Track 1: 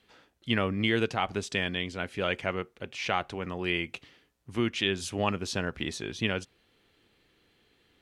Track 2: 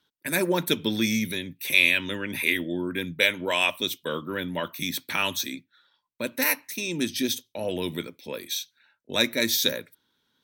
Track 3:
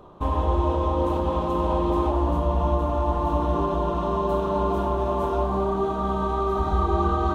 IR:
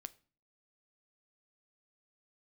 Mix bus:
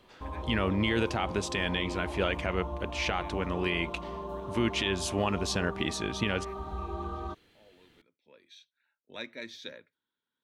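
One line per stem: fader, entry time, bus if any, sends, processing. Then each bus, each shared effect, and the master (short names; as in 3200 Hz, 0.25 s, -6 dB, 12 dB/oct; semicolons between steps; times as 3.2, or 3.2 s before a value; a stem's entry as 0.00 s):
+2.5 dB, 0.00 s, no send, limiter -19 dBFS, peak gain reduction 7 dB
-14.0 dB, 0.00 s, no send, LPF 2900 Hz 12 dB/oct; low shelf 320 Hz -6.5 dB; auto duck -15 dB, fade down 0.60 s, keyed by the first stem
-14.5 dB, 0.00 s, no send, dry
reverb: off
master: dry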